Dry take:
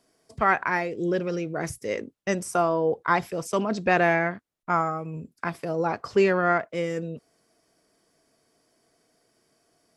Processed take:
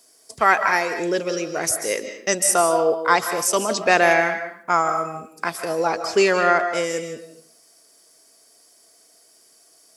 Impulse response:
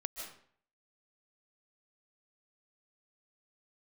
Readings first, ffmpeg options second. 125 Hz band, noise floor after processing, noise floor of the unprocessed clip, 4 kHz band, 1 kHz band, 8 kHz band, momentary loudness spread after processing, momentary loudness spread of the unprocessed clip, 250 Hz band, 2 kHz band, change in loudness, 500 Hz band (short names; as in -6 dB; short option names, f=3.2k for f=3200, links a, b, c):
-5.0 dB, -55 dBFS, -70 dBFS, +12.5 dB, +5.5 dB, +18.5 dB, 11 LU, 12 LU, +0.5 dB, +6.5 dB, +5.5 dB, +4.5 dB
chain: -filter_complex "[0:a]bass=f=250:g=-11,treble=f=4k:g=14,asplit=2[a][b];[1:a]atrim=start_sample=2205,lowshelf=f=100:g=-11.5[c];[b][c]afir=irnorm=-1:irlink=0,volume=2.5dB[d];[a][d]amix=inputs=2:normalize=0,volume=-1dB"